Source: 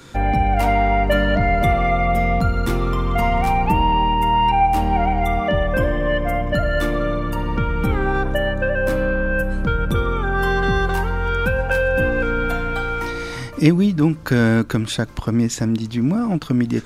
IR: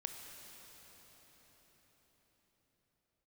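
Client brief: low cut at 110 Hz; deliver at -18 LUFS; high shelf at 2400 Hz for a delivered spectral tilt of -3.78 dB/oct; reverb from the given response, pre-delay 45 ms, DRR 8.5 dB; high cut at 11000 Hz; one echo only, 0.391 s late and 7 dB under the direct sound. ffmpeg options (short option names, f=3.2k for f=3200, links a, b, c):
-filter_complex "[0:a]highpass=110,lowpass=11k,highshelf=f=2.4k:g=-6,aecho=1:1:391:0.447,asplit=2[a][b];[1:a]atrim=start_sample=2205,adelay=45[c];[b][c]afir=irnorm=-1:irlink=0,volume=-7dB[d];[a][d]amix=inputs=2:normalize=0,volume=1.5dB"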